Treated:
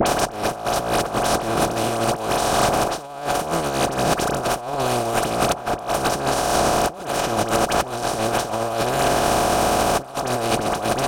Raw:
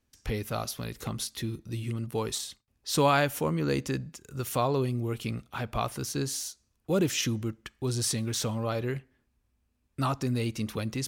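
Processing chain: spectral levelling over time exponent 0.2; peaking EQ 720 Hz +14 dB 0.55 oct; phase dispersion highs, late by 62 ms, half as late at 1.4 kHz; compressor with a negative ratio -26 dBFS, ratio -0.5; saturation -10 dBFS, distortion -23 dB; three bands compressed up and down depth 100%; trim +5 dB

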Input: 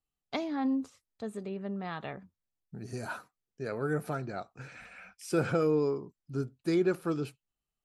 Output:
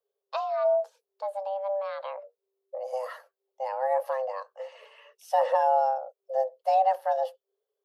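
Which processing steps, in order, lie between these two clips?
frequency shift +390 Hz; graphic EQ 250/500/2000/8000 Hz -5/+8/-9/-12 dB; trim +2 dB

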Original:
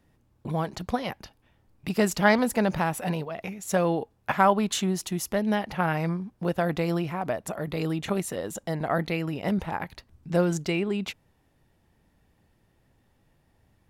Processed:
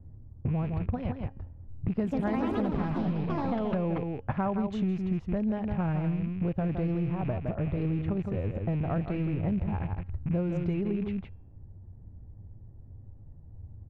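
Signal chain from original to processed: rattle on loud lows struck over -42 dBFS, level -24 dBFS; level-controlled noise filter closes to 950 Hz, open at -19.5 dBFS; tilt EQ -4 dB/octave; feedback comb 270 Hz, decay 0.79 s, mix 30%; echo from a far wall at 28 m, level -8 dB; 1.91–4.32 s: ever faster or slower copies 158 ms, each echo +4 st, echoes 3; low-pass 2.9 kHz 6 dB/octave; peaking EQ 94 Hz +13 dB 0.59 oct; compression 5:1, threshold -29 dBFS, peak gain reduction 15 dB; trim +1.5 dB

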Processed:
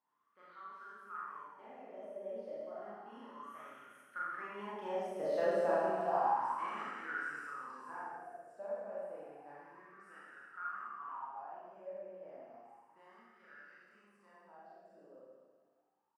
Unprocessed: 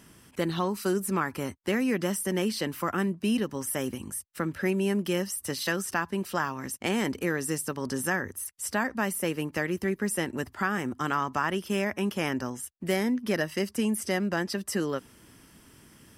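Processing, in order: Doppler pass-by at 5.49 s, 19 m/s, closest 7.9 m; on a send: feedback delay 344 ms, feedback 42%, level -19 dB; on the sum: Schroeder reverb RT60 1.8 s, combs from 27 ms, DRR -9 dB; wah-wah 0.31 Hz 580–1400 Hz, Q 9.1; trim +6 dB

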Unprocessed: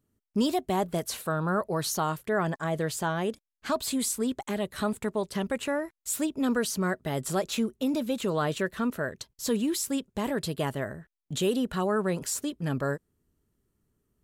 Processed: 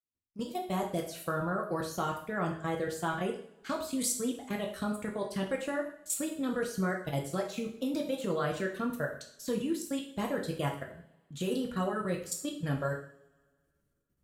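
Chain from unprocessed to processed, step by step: fade-in on the opening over 0.95 s; peaking EQ 900 Hz -5.5 dB 0.25 oct; level held to a coarse grid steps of 15 dB; reverb removal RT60 1.1 s; two-slope reverb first 0.54 s, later 2 s, from -25 dB, DRR 0 dB; trim -2 dB

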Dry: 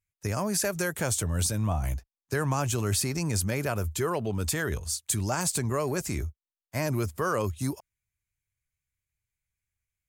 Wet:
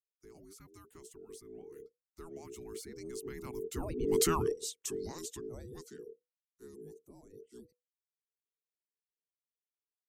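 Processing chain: octave divider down 1 oct, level +3 dB; Doppler pass-by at 4.27 s, 21 m/s, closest 3.2 m; reverb removal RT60 0.56 s; time-frequency box 5.98–7.35 s, 350–6100 Hz -9 dB; frequency shift -490 Hz

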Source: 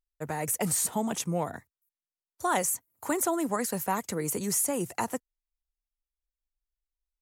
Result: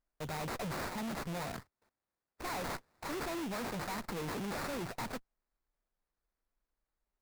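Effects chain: valve stage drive 43 dB, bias 0.7; sample-rate reducer 3.1 kHz, jitter 20%; trim +6 dB

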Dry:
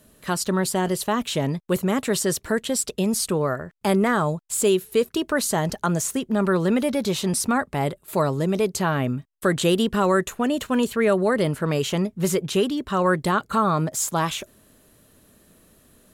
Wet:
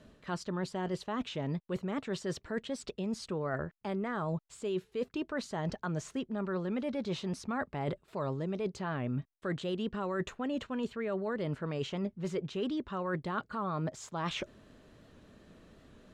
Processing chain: reverse; compression 12:1, threshold -31 dBFS, peak gain reduction 16.5 dB; reverse; distance through air 150 m; warped record 78 rpm, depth 100 cents

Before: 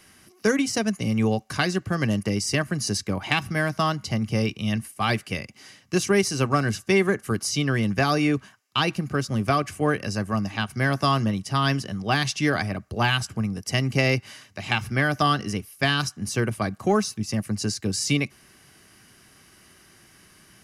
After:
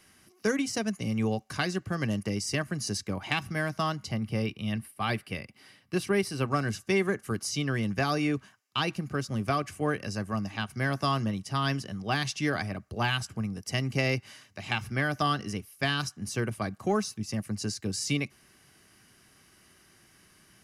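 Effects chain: 4.11–6.48 s: peaking EQ 6.6 kHz -13 dB 0.46 oct; trim -6 dB

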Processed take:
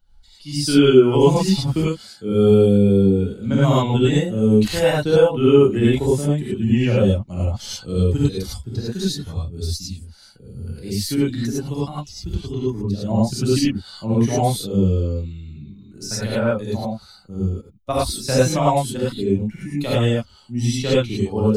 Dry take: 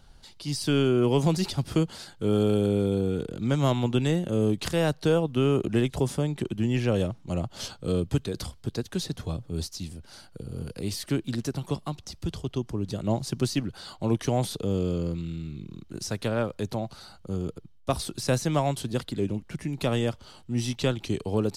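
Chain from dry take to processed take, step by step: expander on every frequency bin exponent 1.5; 1.88–2.41 s: comb of notches 920 Hz; gated-style reverb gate 130 ms rising, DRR -8 dB; trim +2.5 dB

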